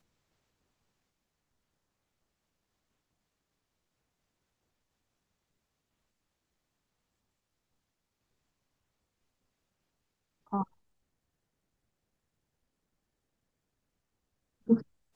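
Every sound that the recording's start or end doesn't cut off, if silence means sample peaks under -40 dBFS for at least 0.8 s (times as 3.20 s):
10.53–10.63 s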